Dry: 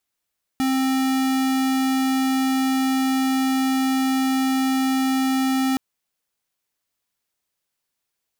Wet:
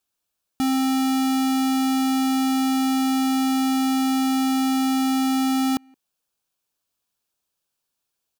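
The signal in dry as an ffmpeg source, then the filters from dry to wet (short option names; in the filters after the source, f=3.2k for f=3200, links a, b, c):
-f lavfi -i "aevalsrc='0.0944*(2*lt(mod(264*t,1),0.5)-1)':d=5.17:s=44100"
-filter_complex "[0:a]equalizer=f=2k:t=o:w=0.23:g=-12,asplit=2[a][b];[b]adelay=170,highpass=300,lowpass=3.4k,asoftclip=type=hard:threshold=-28.5dB,volume=-22dB[c];[a][c]amix=inputs=2:normalize=0"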